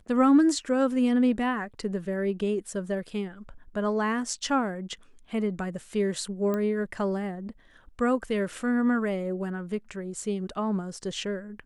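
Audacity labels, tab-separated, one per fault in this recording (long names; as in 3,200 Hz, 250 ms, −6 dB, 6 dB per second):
6.540000	6.540000	click −18 dBFS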